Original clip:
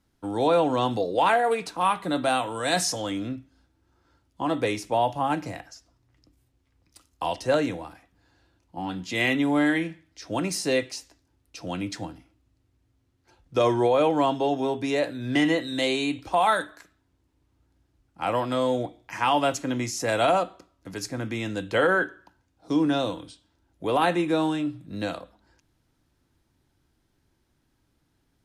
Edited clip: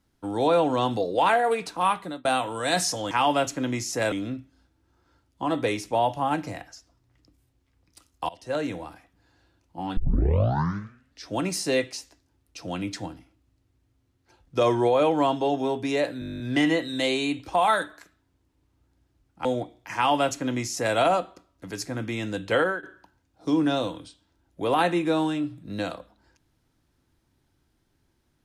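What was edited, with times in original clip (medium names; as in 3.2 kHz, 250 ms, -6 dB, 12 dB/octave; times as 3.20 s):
1.92–2.25 s: fade out
7.28–7.83 s: fade in, from -22 dB
8.96 s: tape start 1.32 s
15.19 s: stutter 0.02 s, 11 plays
18.24–18.68 s: delete
19.18–20.19 s: copy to 3.11 s
21.80–22.06 s: fade out, to -17.5 dB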